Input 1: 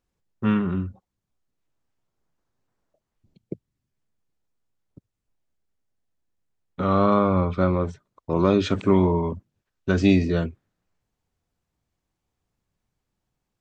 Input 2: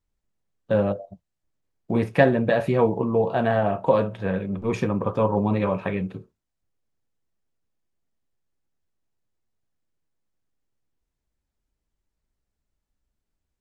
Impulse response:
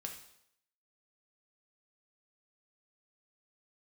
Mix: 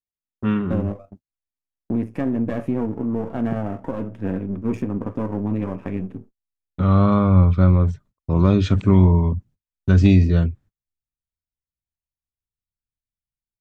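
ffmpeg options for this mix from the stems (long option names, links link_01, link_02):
-filter_complex "[0:a]asubboost=boost=9:cutoff=110,volume=-1.5dB[link_01];[1:a]aeval=exprs='if(lt(val(0),0),0.251*val(0),val(0))':channel_layout=same,equalizer=frequency=100:width_type=o:width=0.67:gain=8,equalizer=frequency=250:width_type=o:width=0.67:gain=11,equalizer=frequency=4000:width_type=o:width=0.67:gain=-10,alimiter=limit=-12dB:level=0:latency=1:release=315,volume=-3.5dB[link_02];[link_01][link_02]amix=inputs=2:normalize=0,agate=range=-29dB:threshold=-45dB:ratio=16:detection=peak,equalizer=frequency=290:width_type=o:width=1.2:gain=5"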